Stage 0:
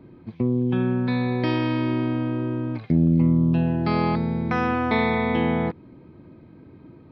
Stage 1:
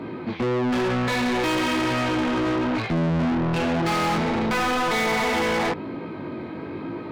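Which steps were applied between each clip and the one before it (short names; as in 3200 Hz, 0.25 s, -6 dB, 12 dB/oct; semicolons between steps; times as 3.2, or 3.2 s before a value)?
chorus 1 Hz, delay 17.5 ms, depth 4.7 ms; overdrive pedal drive 37 dB, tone 3900 Hz, clips at -12.5 dBFS; gain -4 dB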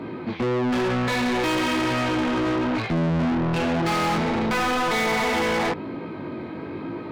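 nothing audible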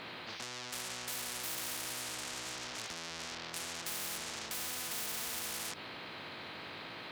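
HPF 210 Hz 12 dB/oct; spectral compressor 10:1; gain -8 dB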